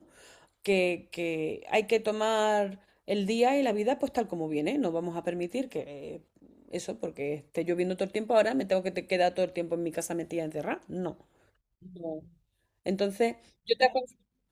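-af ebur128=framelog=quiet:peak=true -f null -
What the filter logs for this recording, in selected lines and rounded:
Integrated loudness:
  I:         -30.0 LUFS
  Threshold: -40.7 LUFS
Loudness range:
  LRA:         6.7 LU
  Threshold: -50.9 LUFS
  LRA low:   -35.2 LUFS
  LRA high:  -28.5 LUFS
True peak:
  Peak:       -8.5 dBFS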